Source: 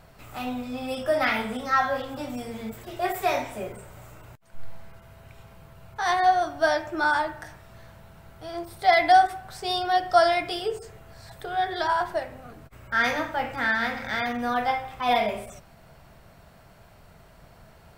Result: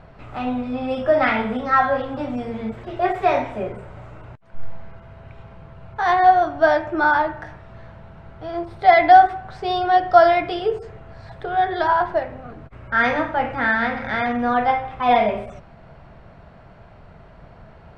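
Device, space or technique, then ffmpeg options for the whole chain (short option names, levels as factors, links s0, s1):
phone in a pocket: -af "lowpass=3700,highshelf=f=2500:g=-9.5,volume=2.37"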